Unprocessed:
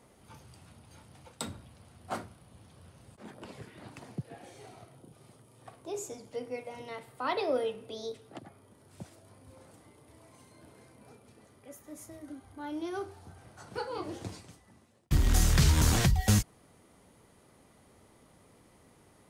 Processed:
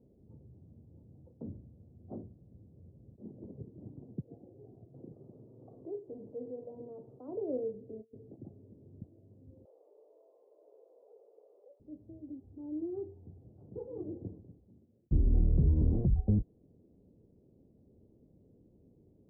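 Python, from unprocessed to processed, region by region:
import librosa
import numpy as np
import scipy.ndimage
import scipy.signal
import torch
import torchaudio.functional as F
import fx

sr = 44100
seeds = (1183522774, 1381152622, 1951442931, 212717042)

y = fx.chain(x, sr, fx.cheby_ripple(hz=3700.0, ripple_db=3),
    fx.low_shelf(hz=370.0, db=6.5), at=(3.17, 4.03))
y = fx.chain(y, sr, fx.tilt_eq(slope=3.5),
    fx.env_flatten(amount_pct=50), at=(4.94, 7.28))
y = fx.chain(y, sr, fx.moving_average(points=13),
    fx.over_compress(threshold_db=-49.0, ratio=-0.5), at=(8.01, 9.02))
y = fx.chain(y, sr, fx.steep_highpass(hz=460.0, slope=48),
    fx.env_flatten(amount_pct=70), at=(9.65, 11.8))
y = scipy.signal.sosfilt(scipy.signal.cheby2(4, 70, 2000.0, 'lowpass', fs=sr, output='sos'), y)
y = fx.dynamic_eq(y, sr, hz=120.0, q=0.97, threshold_db=-41.0, ratio=4.0, max_db=-4)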